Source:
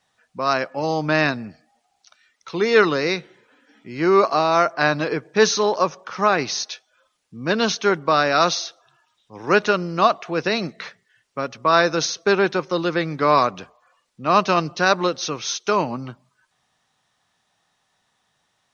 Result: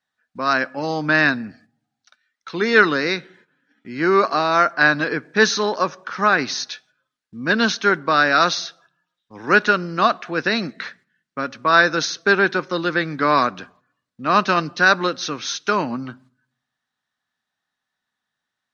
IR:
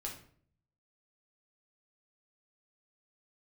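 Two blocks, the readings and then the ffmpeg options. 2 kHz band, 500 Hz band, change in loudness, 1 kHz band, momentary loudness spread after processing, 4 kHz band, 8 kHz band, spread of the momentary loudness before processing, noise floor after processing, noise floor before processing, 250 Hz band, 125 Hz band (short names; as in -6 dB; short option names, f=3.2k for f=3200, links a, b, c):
+6.0 dB, -2.0 dB, +1.5 dB, +0.5 dB, 14 LU, +1.0 dB, n/a, 13 LU, -82 dBFS, -70 dBFS, +1.0 dB, -1.0 dB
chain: -filter_complex "[0:a]agate=range=-14dB:threshold=-52dB:ratio=16:detection=peak,equalizer=f=250:t=o:w=0.67:g=8,equalizer=f=1.6k:t=o:w=0.67:g=11,equalizer=f=4k:t=o:w=0.67:g=5,asplit=2[a][b];[1:a]atrim=start_sample=2205[c];[b][c]afir=irnorm=-1:irlink=0,volume=-19.5dB[d];[a][d]amix=inputs=2:normalize=0,volume=-4dB"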